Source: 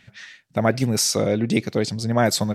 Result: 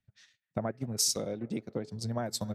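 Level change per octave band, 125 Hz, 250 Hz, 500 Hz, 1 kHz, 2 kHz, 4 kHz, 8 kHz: −13.5, −14.0, −14.5, −15.0, −20.5, −9.5, −7.0 decibels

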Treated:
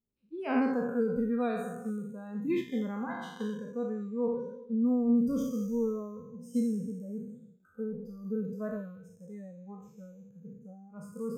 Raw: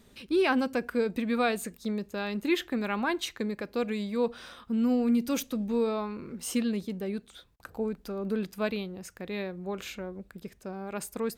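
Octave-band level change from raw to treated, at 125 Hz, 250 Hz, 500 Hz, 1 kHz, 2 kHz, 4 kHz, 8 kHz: −1.5 dB, −1.0 dB, −3.5 dB, −6.0 dB, −10.0 dB, below −15 dB, below −10 dB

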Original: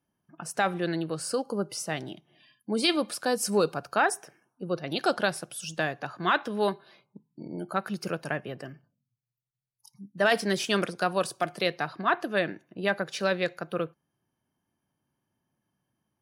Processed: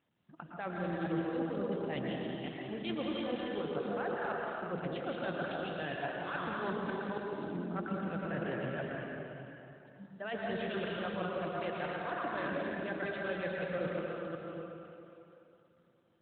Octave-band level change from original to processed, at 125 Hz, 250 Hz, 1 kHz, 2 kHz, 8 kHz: −3.5 dB, −5.0 dB, −9.0 dB, −9.0 dB, below −40 dB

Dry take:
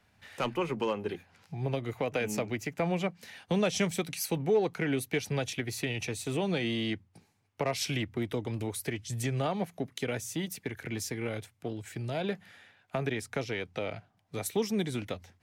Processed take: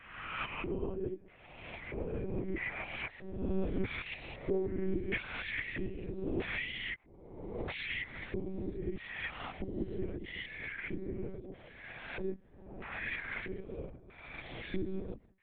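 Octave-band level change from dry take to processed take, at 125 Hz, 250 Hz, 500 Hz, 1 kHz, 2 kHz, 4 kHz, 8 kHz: −8.5 dB, −6.5 dB, −7.5 dB, −9.5 dB, −0.5 dB, −8.0 dB, below −40 dB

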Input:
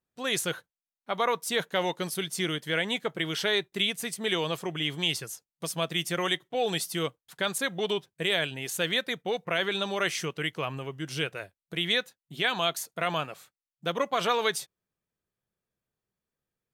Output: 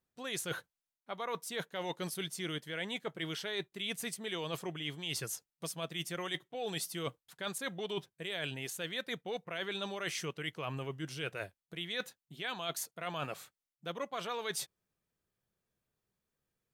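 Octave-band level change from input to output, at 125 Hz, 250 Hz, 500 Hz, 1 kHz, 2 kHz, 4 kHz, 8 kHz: −7.0, −8.5, −10.0, −10.5, −10.0, −10.5, −6.5 decibels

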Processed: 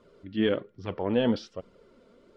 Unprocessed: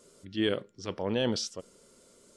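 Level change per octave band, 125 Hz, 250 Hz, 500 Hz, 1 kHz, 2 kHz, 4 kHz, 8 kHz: +2.0 dB, +4.5 dB, +3.5 dB, +3.0 dB, +1.0 dB, −4.0 dB, below −15 dB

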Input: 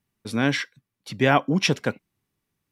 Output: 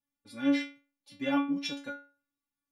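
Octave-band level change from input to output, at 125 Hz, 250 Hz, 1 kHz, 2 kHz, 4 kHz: −26.0, −4.5, −13.5, −13.0, −11.0 decibels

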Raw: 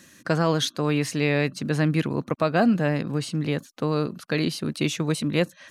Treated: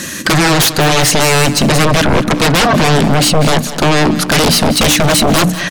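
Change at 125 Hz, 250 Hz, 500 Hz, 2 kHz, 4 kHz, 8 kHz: +12.0, +11.0, +12.0, +16.5, +19.5, +23.0 decibels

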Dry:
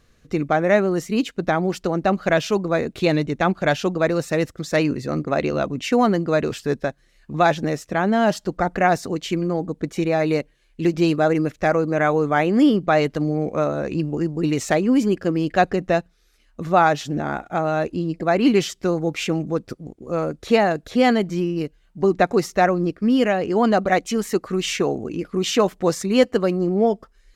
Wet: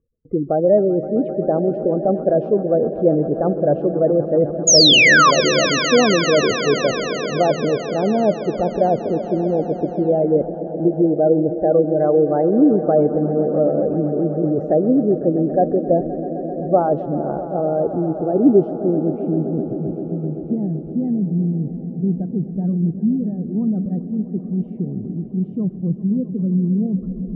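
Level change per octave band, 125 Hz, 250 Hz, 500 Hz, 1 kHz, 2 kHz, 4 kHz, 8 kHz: +3.0, +2.5, +3.5, −1.5, +3.5, +10.5, +10.5 decibels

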